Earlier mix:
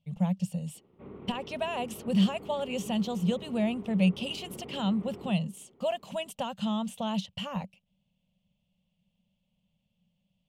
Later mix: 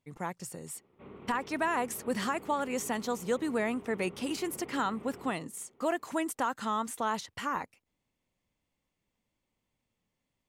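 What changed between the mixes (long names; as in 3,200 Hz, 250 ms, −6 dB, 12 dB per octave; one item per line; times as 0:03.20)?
speech: remove drawn EQ curve 120 Hz 0 dB, 190 Hz +14 dB, 330 Hz −26 dB, 570 Hz +3 dB, 1,300 Hz −11 dB, 2,000 Hz −8 dB, 2,900 Hz +14 dB, 4,400 Hz +3 dB, 7,100 Hz −2 dB
master: add tilt shelving filter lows −5 dB, about 900 Hz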